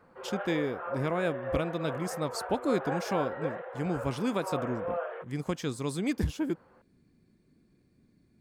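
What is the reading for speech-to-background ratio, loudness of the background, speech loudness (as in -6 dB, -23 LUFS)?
4.0 dB, -37.0 LUFS, -33.0 LUFS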